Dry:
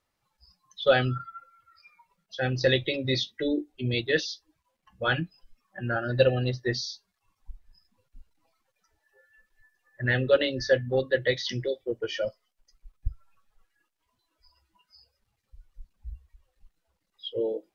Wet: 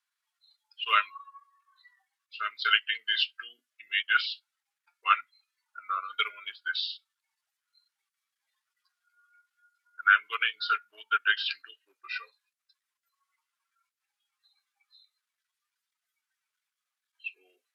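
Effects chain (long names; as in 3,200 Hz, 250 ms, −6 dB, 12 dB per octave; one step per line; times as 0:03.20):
Chebyshev high-pass filter 1,600 Hz, order 3
pitch shifter −3.5 semitones
expander for the loud parts 1.5 to 1, over −44 dBFS
level +7.5 dB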